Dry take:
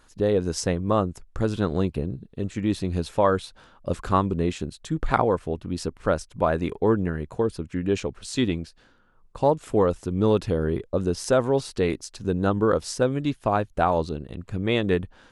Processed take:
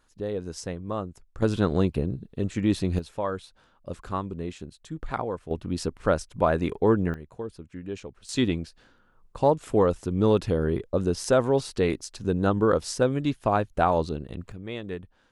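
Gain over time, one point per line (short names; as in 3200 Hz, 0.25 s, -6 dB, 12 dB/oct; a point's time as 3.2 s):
-9 dB
from 1.42 s +1 dB
from 2.99 s -9 dB
from 5.51 s 0 dB
from 7.14 s -11 dB
from 8.29 s -0.5 dB
from 14.52 s -12 dB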